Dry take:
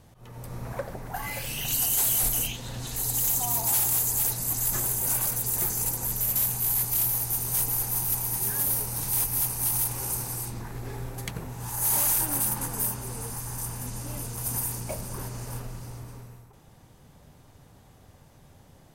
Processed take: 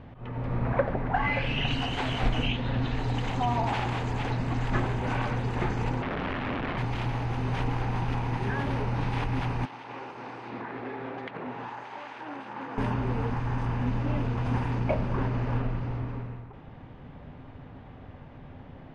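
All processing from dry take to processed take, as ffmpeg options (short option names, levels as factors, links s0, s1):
-filter_complex "[0:a]asettb=1/sr,asplit=3[s0][s1][s2];[s0]atrim=end=6.024[s3];[s1]atrim=start=6.02:end=6.78,asetpts=PTS-STARTPTS,afade=t=in:d=0.004:c=qsin,afade=t=out:st=0.756:d=0.004:c=qsin,lowpass=1900,asubboost=boost=6:cutoff=57,aeval=exprs='(mod(50.1*val(0)+1,2)-1)/50.1':c=same[s4];[s2]atrim=start=6.776[s5];[s3][s4]acrossfade=d=0.004:c1=hsin:c2=qsin[s6];[s6][s5]acrossfade=d=0.004:c1=qsin:c2=hsin,asettb=1/sr,asplit=3[s7][s8][s9];[s7]atrim=end=9.654[s10];[s8]atrim=start=9.65:end=12.78,asetpts=PTS-STARTPTS,afade=t=in:d=0.004:c=qsin,afade=t=out:st=3.126:d=0.004:c=qsin,highpass=340,lowpass=6800,acompressor=threshold=0.01:ratio=12:attack=3.2:release=140:knee=1:detection=peak[s11];[s9]atrim=start=12.776[s12];[s10][s11]acrossfade=d=0.004:c1=hsin:c2=qsin[s13];[s13][s12]acrossfade=d=0.004:c1=qsin:c2=hsin,lowpass=f=2800:w=0.5412,lowpass=f=2800:w=1.3066,equalizer=f=260:w=7.9:g=8,volume=2.51"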